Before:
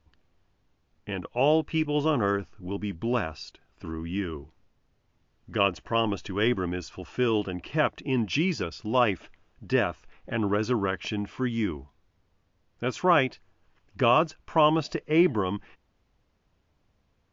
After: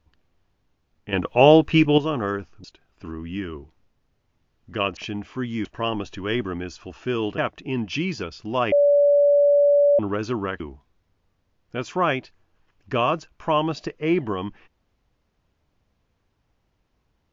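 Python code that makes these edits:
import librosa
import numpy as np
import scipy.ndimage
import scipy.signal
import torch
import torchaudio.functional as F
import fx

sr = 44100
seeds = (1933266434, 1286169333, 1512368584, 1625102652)

y = fx.edit(x, sr, fx.clip_gain(start_s=1.13, length_s=0.85, db=9.5),
    fx.cut(start_s=2.64, length_s=0.8),
    fx.cut(start_s=7.5, length_s=0.28),
    fx.bleep(start_s=9.12, length_s=1.27, hz=575.0, db=-13.0),
    fx.move(start_s=11.0, length_s=0.68, to_s=5.77), tone=tone)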